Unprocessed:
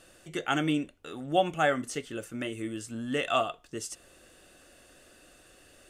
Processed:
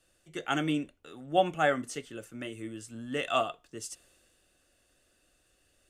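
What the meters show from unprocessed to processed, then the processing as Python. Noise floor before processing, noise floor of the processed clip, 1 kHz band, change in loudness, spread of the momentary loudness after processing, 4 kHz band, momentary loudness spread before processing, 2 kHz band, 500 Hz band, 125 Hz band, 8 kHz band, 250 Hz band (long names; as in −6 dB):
−58 dBFS, −70 dBFS, −1.0 dB, −1.0 dB, 16 LU, −2.0 dB, 12 LU, −1.5 dB, −1.0 dB, −2.5 dB, −2.5 dB, −2.5 dB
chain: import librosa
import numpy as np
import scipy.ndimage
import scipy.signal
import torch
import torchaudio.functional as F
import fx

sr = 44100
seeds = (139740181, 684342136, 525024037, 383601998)

y = fx.band_widen(x, sr, depth_pct=40)
y = y * librosa.db_to_amplitude(-3.0)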